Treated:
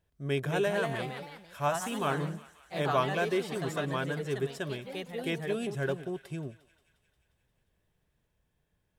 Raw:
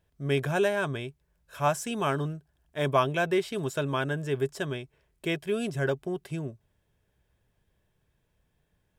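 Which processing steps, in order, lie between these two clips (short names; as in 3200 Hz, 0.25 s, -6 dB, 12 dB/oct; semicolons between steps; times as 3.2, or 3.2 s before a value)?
echoes that change speed 0.257 s, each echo +2 st, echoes 3, each echo -6 dB; on a send: thinning echo 0.177 s, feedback 70%, high-pass 860 Hz, level -17 dB; on the sum: gain -4 dB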